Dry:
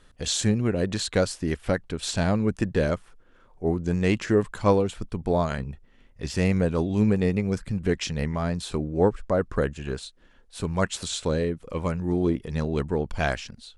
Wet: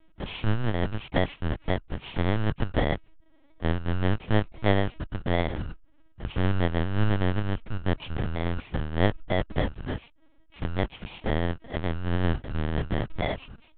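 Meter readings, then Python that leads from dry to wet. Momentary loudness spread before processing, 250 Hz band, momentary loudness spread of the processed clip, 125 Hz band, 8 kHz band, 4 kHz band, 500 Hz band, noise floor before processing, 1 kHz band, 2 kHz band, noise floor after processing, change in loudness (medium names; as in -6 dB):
9 LU, -5.0 dB, 9 LU, -0.5 dB, under -40 dB, -4.0 dB, -6.0 dB, -56 dBFS, -1.0 dB, -0.5 dB, -57 dBFS, -3.5 dB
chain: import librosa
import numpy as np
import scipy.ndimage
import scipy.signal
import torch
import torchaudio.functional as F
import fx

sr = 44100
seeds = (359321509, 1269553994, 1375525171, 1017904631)

y = fx.bit_reversed(x, sr, seeds[0], block=32)
y = fx.lpc_vocoder(y, sr, seeds[1], excitation='pitch_kept', order=8)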